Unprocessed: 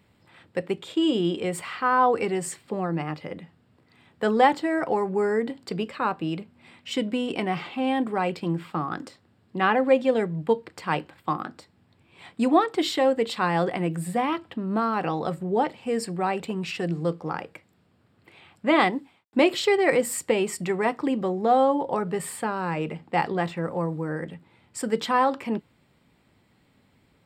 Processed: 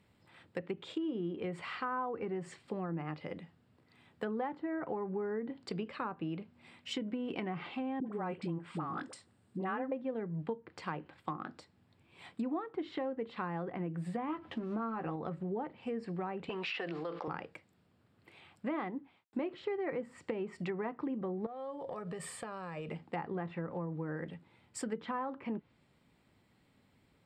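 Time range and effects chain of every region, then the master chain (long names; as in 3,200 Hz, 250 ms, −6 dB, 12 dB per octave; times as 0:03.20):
0:08.00–0:09.92: parametric band 8,500 Hz +14 dB 0.43 octaves + all-pass dispersion highs, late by 61 ms, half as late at 530 Hz
0:14.27–0:15.16: mu-law and A-law mismatch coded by mu + low-shelf EQ 87 Hz −7.5 dB + double-tracking delay 13 ms −6 dB
0:16.49–0:17.28: band-pass filter 590–4,500 Hz + envelope flattener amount 70%
0:21.46–0:22.89: downward compressor 12 to 1, threshold −30 dBFS + comb filter 1.7 ms, depth 41%
whole clip: treble cut that deepens with the level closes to 1,400 Hz, closed at −22 dBFS; dynamic equaliser 660 Hz, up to −5 dB, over −33 dBFS, Q 1.1; downward compressor 5 to 1, threshold −27 dBFS; level −6.5 dB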